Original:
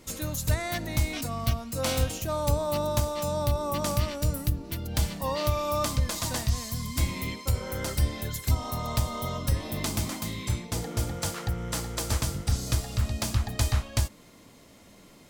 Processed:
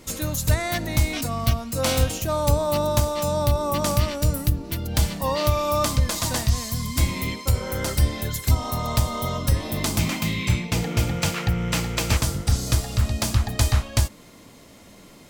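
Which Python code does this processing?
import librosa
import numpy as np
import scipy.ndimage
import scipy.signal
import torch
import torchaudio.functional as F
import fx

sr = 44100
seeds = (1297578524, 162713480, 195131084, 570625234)

y = fx.graphic_eq_15(x, sr, hz=(160, 2500, 10000), db=(7, 10, -5), at=(9.99, 12.17))
y = y * librosa.db_to_amplitude(5.5)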